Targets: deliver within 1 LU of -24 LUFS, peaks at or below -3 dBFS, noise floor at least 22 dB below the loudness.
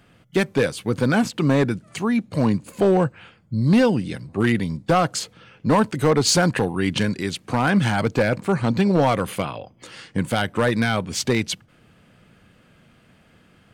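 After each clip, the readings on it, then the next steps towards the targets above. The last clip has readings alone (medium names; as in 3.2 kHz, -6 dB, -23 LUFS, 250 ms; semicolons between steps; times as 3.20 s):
clipped samples 0.9%; clipping level -11.0 dBFS; loudness -21.5 LUFS; peak level -11.0 dBFS; loudness target -24.0 LUFS
-> clip repair -11 dBFS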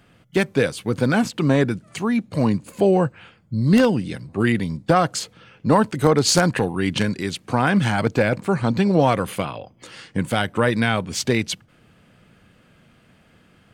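clipped samples 0.0%; loudness -21.0 LUFS; peak level -2.0 dBFS; loudness target -24.0 LUFS
-> trim -3 dB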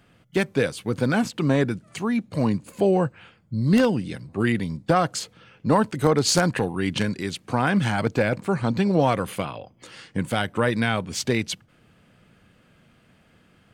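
loudness -24.0 LUFS; peak level -5.0 dBFS; noise floor -59 dBFS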